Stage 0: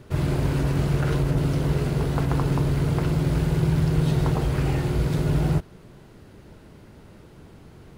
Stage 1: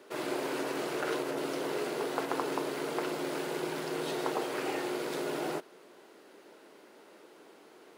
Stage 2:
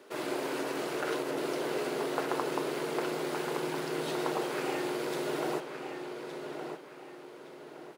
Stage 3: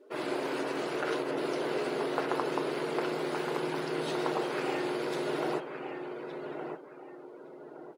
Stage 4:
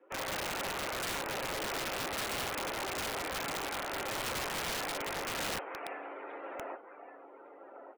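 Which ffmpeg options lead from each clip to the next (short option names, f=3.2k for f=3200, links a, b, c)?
-af "highpass=f=330:w=0.5412,highpass=f=330:w=1.3066,volume=-2dB"
-filter_complex "[0:a]asplit=2[a][b];[b]adelay=1166,lowpass=f=4.3k:p=1,volume=-6.5dB,asplit=2[c][d];[d]adelay=1166,lowpass=f=4.3k:p=1,volume=0.37,asplit=2[e][f];[f]adelay=1166,lowpass=f=4.3k:p=1,volume=0.37,asplit=2[g][h];[h]adelay=1166,lowpass=f=4.3k:p=1,volume=0.37[i];[a][c][e][g][i]amix=inputs=5:normalize=0"
-af "afftdn=nr=17:nf=-51,volume=1dB"
-af "highpass=f=590:t=q:w=0.5412,highpass=f=590:t=q:w=1.307,lowpass=f=2.7k:t=q:w=0.5176,lowpass=f=2.7k:t=q:w=0.7071,lowpass=f=2.7k:t=q:w=1.932,afreqshift=-74,aeval=exprs='(mod(42.2*val(0)+1,2)-1)/42.2':c=same,volume=2.5dB"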